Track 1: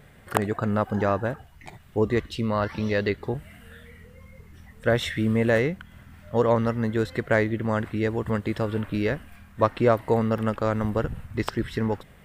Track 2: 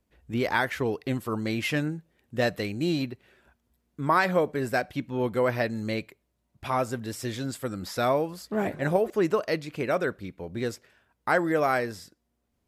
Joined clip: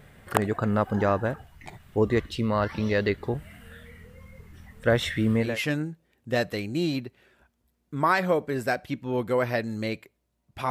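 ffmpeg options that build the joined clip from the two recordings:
-filter_complex "[0:a]apad=whole_dur=10.7,atrim=end=10.7,atrim=end=5.6,asetpts=PTS-STARTPTS[a];[1:a]atrim=start=1.4:end=6.76,asetpts=PTS-STARTPTS[b];[a][b]acrossfade=d=0.26:c1=tri:c2=tri"

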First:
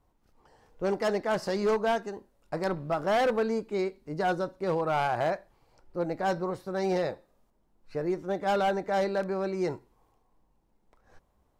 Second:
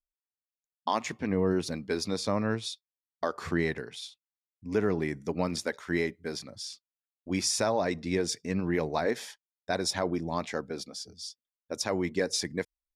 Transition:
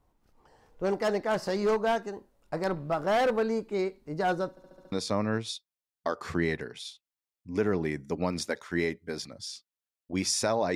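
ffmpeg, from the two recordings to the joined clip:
-filter_complex "[0:a]apad=whole_dur=10.75,atrim=end=10.75,asplit=6[a][b][c][d][e][f];[a]atrim=end=4.572[g];[b]atrim=start=4.498:end=4.572[h];[c]atrim=start=4.498:end=4.572[i];[d]atrim=start=4.498:end=4.572[j];[e]atrim=start=4.498:end=4.572[k];[f]atrim=start=4.498:end=4.572[l];[1:a]atrim=start=2.088:end=7.92[m];[g][h]acrossfade=d=0.004:c1=hsin:c2=hsin[n];[n][i]acrossfade=d=0.004:c1=hsin:c2=hsin[o];[o][j]acrossfade=d=0.004:c1=hsin:c2=hsin[p];[p][k]acrossfade=d=0.004:c1=hsin:c2=hsin[q];[q][l]acrossfade=d=0.004:c1=hsin:c2=hsin[r];[r][m]acrossfade=d=0.004:c1=hsin:c2=hsin"

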